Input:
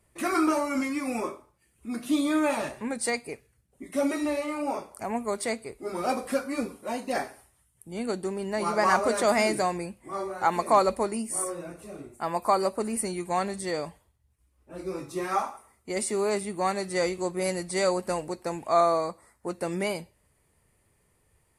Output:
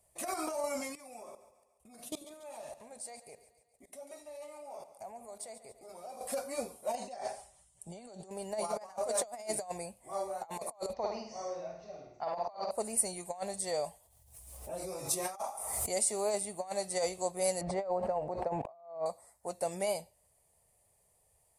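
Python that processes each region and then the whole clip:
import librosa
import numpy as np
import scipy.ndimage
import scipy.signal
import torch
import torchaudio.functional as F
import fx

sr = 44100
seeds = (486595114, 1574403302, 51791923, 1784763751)

y = fx.chain(x, sr, fx.level_steps(step_db=22),
    fx.echo_split(split_hz=480.0, low_ms=92, high_ms=141, feedback_pct=52, wet_db=-13.0), at=(0.95, 6.21))
y = fx.chain(y, sr, fx.lowpass(hz=8200.0, slope=24),
    fx.comb(ms=5.1, depth=0.44),
    fx.over_compress(threshold_db=-39.0, ratio=-1.0), at=(6.95, 8.31))
y = fx.chain(y, sr, fx.cheby_ripple(hz=6200.0, ripple_db=3),
    fx.room_flutter(wall_m=8.8, rt60_s=0.59), at=(10.93, 12.71))
y = fx.chain(y, sr, fx.high_shelf(hz=6500.0, db=6.0),
    fx.pre_swell(db_per_s=40.0), at=(13.84, 15.99))
y = fx.chain(y, sr, fx.lowpass(hz=1500.0, slope=12),
    fx.pre_swell(db_per_s=26.0), at=(17.61, 19.06))
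y = fx.low_shelf_res(y, sr, hz=470.0, db=-13.0, q=3.0)
y = fx.over_compress(y, sr, threshold_db=-26.0, ratio=-0.5)
y = fx.curve_eq(y, sr, hz=(370.0, 1400.0, 7600.0), db=(0, -19, -2))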